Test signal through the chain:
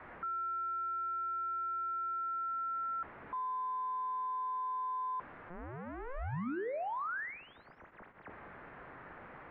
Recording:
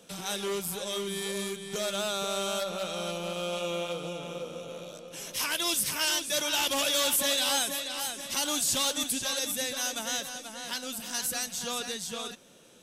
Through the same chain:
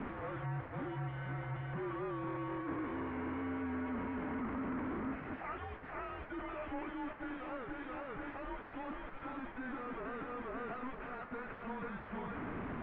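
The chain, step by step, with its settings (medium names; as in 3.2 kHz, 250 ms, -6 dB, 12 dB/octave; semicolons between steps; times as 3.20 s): one-bit comparator; mistuned SSB -260 Hz 300–2100 Hz; de-hum 108 Hz, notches 29; trim -4.5 dB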